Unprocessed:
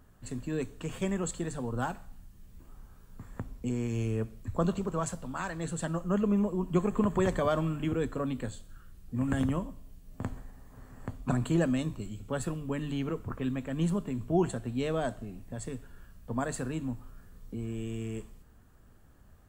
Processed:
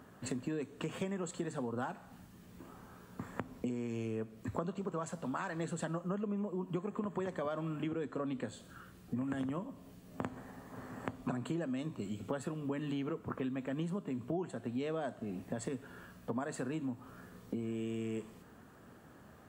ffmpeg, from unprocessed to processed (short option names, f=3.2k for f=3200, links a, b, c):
-filter_complex "[0:a]asettb=1/sr,asplit=3[a][b][c];[a]atrim=end=7.824[d];[b]atrim=start=7.82:end=8.48,asetpts=PTS-STARTPTS,afade=t=in:d=0.004:c=qsin,afade=t=out:st=0.656:d=0.004:c=qsin,lowpass=10k[e];[c]atrim=start=8.476[f];[d][e]acrossfade=d=0.004:c1=hsin:c2=qsin[g];[g][f]acrossfade=d=0.004:c1=qsin:c2=hsin,highpass=180,highshelf=f=4.5k:g=-9,acompressor=threshold=-44dB:ratio=8,volume=9dB"